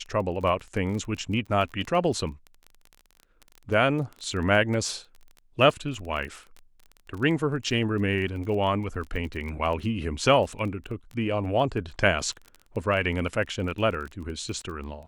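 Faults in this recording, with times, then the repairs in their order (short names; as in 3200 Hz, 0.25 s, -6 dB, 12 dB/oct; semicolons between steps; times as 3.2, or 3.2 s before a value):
crackle 21/s -33 dBFS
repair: de-click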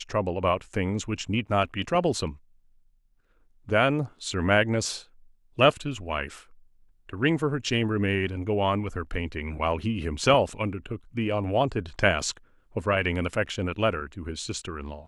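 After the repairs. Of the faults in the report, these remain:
none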